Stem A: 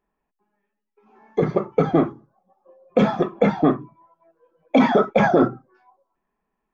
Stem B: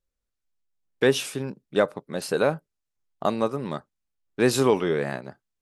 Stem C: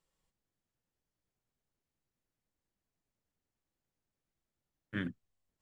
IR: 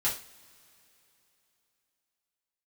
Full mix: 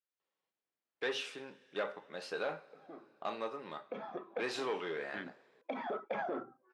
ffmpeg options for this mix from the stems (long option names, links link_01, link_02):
-filter_complex "[0:a]acompressor=threshold=-24dB:ratio=3,adelay=950,volume=-9dB,afade=type=in:start_time=2.76:duration=0.5:silence=0.251189[link_01];[1:a]equalizer=frequency=410:width=0.32:gain=-8.5,volume=-6dB,asplit=3[link_02][link_03][link_04];[link_03]volume=-11dB[link_05];[2:a]adelay=200,volume=-2dB[link_06];[link_04]apad=whole_len=339074[link_07];[link_01][link_07]sidechaincompress=threshold=-40dB:ratio=8:attack=29:release=1310[link_08];[3:a]atrim=start_sample=2205[link_09];[link_05][link_09]afir=irnorm=-1:irlink=0[link_10];[link_08][link_02][link_06][link_10]amix=inputs=4:normalize=0,asoftclip=type=tanh:threshold=-27dB,highpass=370,lowpass=3400"